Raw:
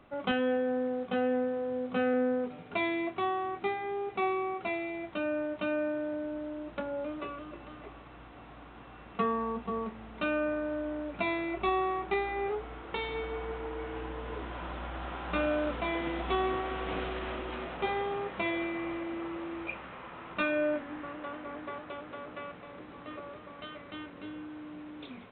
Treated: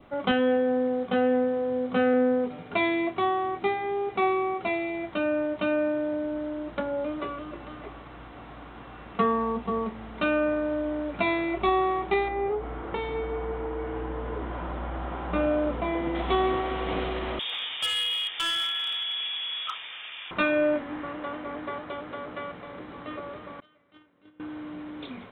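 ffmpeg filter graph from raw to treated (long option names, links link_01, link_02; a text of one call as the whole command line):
ffmpeg -i in.wav -filter_complex "[0:a]asettb=1/sr,asplit=3[link_01][link_02][link_03];[link_01]atrim=end=12.284[link_04];[link_02]atrim=start=12.28:end=16.15,asetpts=PTS-STARTPTS,afade=type=in:duration=0.004:curve=qsin,afade=type=out:start_time=3.866:duration=0.004:curve=qsin,lowpass=frequency=1200:poles=1,acompressor=mode=upward:threshold=-34dB:ratio=2.5:attack=3.2:release=140:knee=2.83:detection=peak[link_05];[link_03]atrim=start=16.146[link_06];[link_04][link_05]acrossfade=duration=0.004:curve1=hsin:curve2=qsin[link_07];[link_07][link_06]acrossfade=duration=0.004:curve1=qsin:curve2=hsin,asettb=1/sr,asplit=3[link_08][link_09][link_10];[link_08]atrim=end=17.394[link_11];[link_09]atrim=start=17.39:end=20.31,asetpts=PTS-STARTPTS,afade=type=in:duration=0.004:curve=qsin,afade=type=out:start_time=2.916:duration=0.004:curve=qsin,lowpass=frequency=3100:width_type=q:width=0.5098,lowpass=frequency=3100:width_type=q:width=0.6013,lowpass=frequency=3100:width_type=q:width=0.9,lowpass=frequency=3100:width_type=q:width=2.563,afreqshift=-3700,asoftclip=type=hard:threshold=-29dB[link_12];[link_10]atrim=start=20.306[link_13];[link_11][link_12]acrossfade=duration=0.004:curve1=hsin:curve2=qsin[link_14];[link_14][link_13]acrossfade=duration=0.004:curve1=qsin:curve2=hsin,asettb=1/sr,asplit=3[link_15][link_16][link_17];[link_15]atrim=end=23.604[link_18];[link_16]atrim=start=23.6:end=24.4,asetpts=PTS-STARTPTS,afade=type=in:duration=0.004:curve=qsin,afade=type=out:start_time=0.796:duration=0.004:curve=qsin,agate=range=-24dB:threshold=-39dB:ratio=16:release=100:detection=peak,highpass=78[link_19];[link_17]atrim=start=24.396[link_20];[link_18][link_19]acrossfade=duration=0.004:curve1=hsin:curve2=qsin[link_21];[link_21][link_20]acrossfade=duration=0.004:curve1=qsin:curve2=hsin,bandreject=frequency=2600:width=16,adynamicequalizer=threshold=0.00355:dfrequency=1500:dqfactor=2.5:tfrequency=1500:tqfactor=2.5:attack=5:release=100:ratio=0.375:range=2.5:mode=cutabove:tftype=bell,volume=6dB" out.wav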